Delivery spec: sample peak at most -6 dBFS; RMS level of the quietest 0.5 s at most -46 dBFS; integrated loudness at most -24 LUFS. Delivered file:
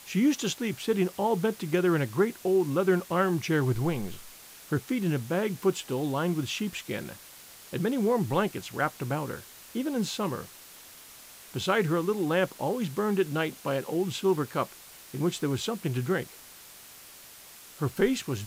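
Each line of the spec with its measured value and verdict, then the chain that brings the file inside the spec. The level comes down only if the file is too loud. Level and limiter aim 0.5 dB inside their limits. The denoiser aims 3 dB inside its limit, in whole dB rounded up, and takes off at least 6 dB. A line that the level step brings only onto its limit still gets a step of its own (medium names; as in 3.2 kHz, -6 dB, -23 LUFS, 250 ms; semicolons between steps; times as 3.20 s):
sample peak -12.0 dBFS: pass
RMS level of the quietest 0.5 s -49 dBFS: pass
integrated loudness -29.0 LUFS: pass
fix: none needed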